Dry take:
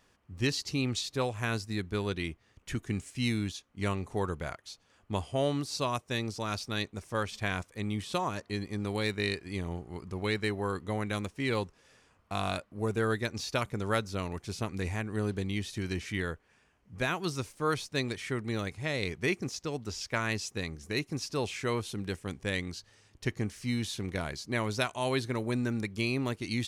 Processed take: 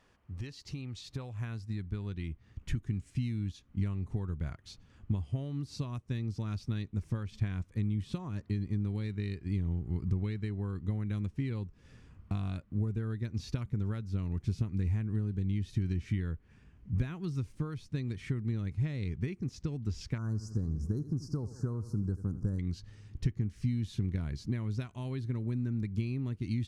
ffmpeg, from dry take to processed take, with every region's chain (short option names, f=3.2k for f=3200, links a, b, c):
-filter_complex "[0:a]asettb=1/sr,asplit=3[a][b][c];[a]atrim=end=20.184[d];[b]atrim=start=20.18:end=22.59,asetpts=PTS-STARTPTS,afade=t=in:d=0.004:c=qsin,afade=t=out:st=2.406:d=0.004:c=qsin,asuperstop=centerf=2700:order=12:qfactor=0.83,aecho=1:1:82|164|246|328:0.158|0.0745|0.035|0.0165,atrim=end_sample=106281[e];[c]atrim=start=22.586[f];[d][e]acrossfade=d=0.004:c1=hsin:c2=qsin[g];[g][f]acrossfade=d=0.004:c1=qsin:c2=hsin,aemphasis=mode=reproduction:type=cd,acompressor=threshold=-41dB:ratio=16,asubboost=boost=8.5:cutoff=210"